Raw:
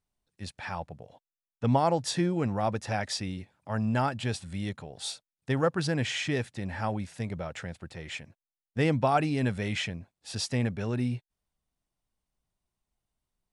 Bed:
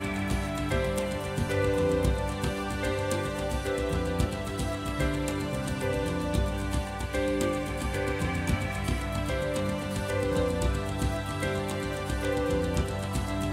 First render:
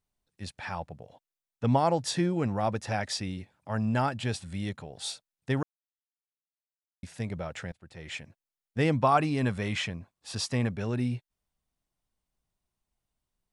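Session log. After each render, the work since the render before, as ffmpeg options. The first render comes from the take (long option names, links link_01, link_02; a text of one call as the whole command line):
ffmpeg -i in.wav -filter_complex "[0:a]asettb=1/sr,asplit=3[link_01][link_02][link_03];[link_01]atrim=end=8.964[link_04];[link_02]atrim=start=8.96:end=10.7,asetpts=PTS-STARTPTS,afade=type=in:duration=0.004:curve=qsin,afade=type=out:start_time=1.736:duration=0.004:curve=qsin,equalizer=frequency=1100:width_type=o:width=0.32:gain=8[link_05];[link_03]atrim=start=10.696[link_06];[link_04][link_05]acrossfade=duration=0.004:curve1=hsin:curve2=qsin[link_07];[link_07][link_06]acrossfade=duration=0.004:curve1=qsin:curve2=hsin,asplit=4[link_08][link_09][link_10][link_11];[link_08]atrim=end=5.63,asetpts=PTS-STARTPTS,afade=type=out:start_time=5.626:duration=0.004:curve=hsin[link_12];[link_09]atrim=start=5.63:end=7.03,asetpts=PTS-STARTPTS,volume=0[link_13];[link_10]atrim=start=7.03:end=7.72,asetpts=PTS-STARTPTS,afade=type=in:duration=0.004:curve=hsin,afade=type=out:start_time=0.686:duration=0.004:curve=hsin:silence=0.0707946[link_14];[link_11]atrim=start=7.72,asetpts=PTS-STARTPTS,afade=type=in:duration=0.41:silence=0.0707946[link_15];[link_12][link_13][link_14][link_15]concat=n=4:v=0:a=1" out.wav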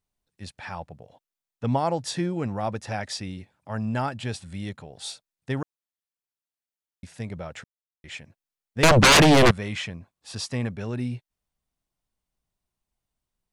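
ffmpeg -i in.wav -filter_complex "[0:a]asettb=1/sr,asplit=3[link_01][link_02][link_03];[link_01]atrim=end=8.834[link_04];[link_02]atrim=start=8.83:end=9.51,asetpts=PTS-STARTPTS,afade=type=in:duration=0.004:curve=qsin,afade=type=out:start_time=0.676:duration=0.004:curve=qsin,aeval=exprs='0.282*sin(PI/2*7.08*val(0)/0.282)':channel_layout=same[link_05];[link_03]atrim=start=9.506[link_06];[link_04][link_05]acrossfade=duration=0.004:curve1=hsin:curve2=qsin[link_07];[link_07][link_06]acrossfade=duration=0.004:curve1=qsin:curve2=hsin,asplit=3[link_08][link_09][link_10];[link_08]atrim=end=7.64,asetpts=PTS-STARTPTS,afade=type=out:start_time=7.636:duration=0.004:curve=hsin[link_11];[link_09]atrim=start=7.64:end=8.04,asetpts=PTS-STARTPTS,volume=0[link_12];[link_10]atrim=start=8.04,asetpts=PTS-STARTPTS,afade=type=in:duration=0.004:curve=hsin[link_13];[link_11][link_12][link_13]concat=n=3:v=0:a=1" out.wav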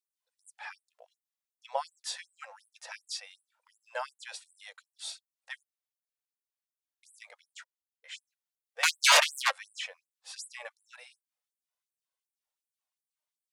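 ffmpeg -i in.wav -af "flanger=delay=1.9:depth=2.1:regen=48:speed=0.25:shape=sinusoidal,afftfilt=real='re*gte(b*sr/1024,440*pow(7900/440,0.5+0.5*sin(2*PI*2.7*pts/sr)))':imag='im*gte(b*sr/1024,440*pow(7900/440,0.5+0.5*sin(2*PI*2.7*pts/sr)))':win_size=1024:overlap=0.75" out.wav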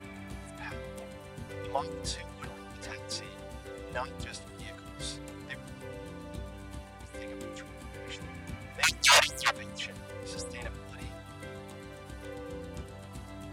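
ffmpeg -i in.wav -i bed.wav -filter_complex "[1:a]volume=-14dB[link_01];[0:a][link_01]amix=inputs=2:normalize=0" out.wav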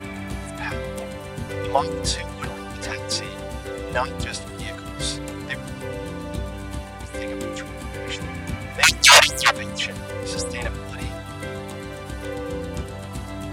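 ffmpeg -i in.wav -af "volume=12dB,alimiter=limit=-1dB:level=0:latency=1" out.wav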